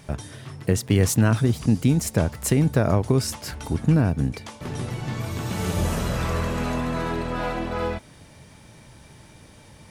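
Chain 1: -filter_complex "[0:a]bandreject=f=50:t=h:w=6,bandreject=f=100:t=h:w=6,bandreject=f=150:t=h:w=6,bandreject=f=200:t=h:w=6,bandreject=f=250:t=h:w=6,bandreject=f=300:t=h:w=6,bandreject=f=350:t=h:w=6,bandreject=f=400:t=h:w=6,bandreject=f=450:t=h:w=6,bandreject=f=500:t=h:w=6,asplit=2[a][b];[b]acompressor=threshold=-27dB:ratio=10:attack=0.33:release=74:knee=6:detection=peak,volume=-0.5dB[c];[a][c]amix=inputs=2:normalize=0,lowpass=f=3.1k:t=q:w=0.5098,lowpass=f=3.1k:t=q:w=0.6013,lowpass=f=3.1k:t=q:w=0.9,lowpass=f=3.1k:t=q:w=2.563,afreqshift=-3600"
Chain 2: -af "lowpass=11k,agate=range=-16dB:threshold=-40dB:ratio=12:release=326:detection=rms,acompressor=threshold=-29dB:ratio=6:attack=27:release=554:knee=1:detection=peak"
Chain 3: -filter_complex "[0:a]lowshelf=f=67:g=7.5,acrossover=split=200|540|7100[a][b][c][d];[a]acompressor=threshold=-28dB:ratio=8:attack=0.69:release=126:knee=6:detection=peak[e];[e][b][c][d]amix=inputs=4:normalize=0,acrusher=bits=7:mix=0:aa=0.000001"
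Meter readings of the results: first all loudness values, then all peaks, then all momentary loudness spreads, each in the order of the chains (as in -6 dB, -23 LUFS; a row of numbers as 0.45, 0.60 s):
-18.5, -33.5, -26.5 LUFS; -6.0, -13.5, -8.5 dBFS; 12, 5, 22 LU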